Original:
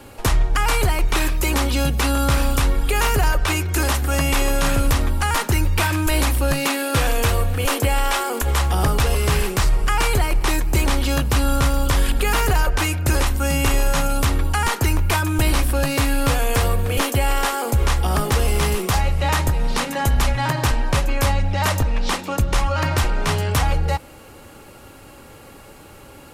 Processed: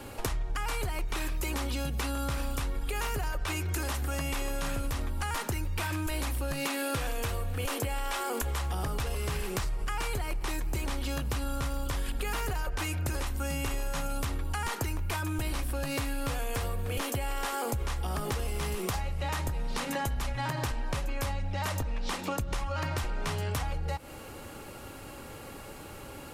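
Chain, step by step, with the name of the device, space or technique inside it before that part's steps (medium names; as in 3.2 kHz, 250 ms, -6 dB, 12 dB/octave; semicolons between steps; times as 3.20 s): serial compression, peaks first (compression, threshold -23 dBFS, peak gain reduction 9.5 dB; compression 2.5:1, threshold -29 dBFS, peak gain reduction 5.5 dB); trim -1.5 dB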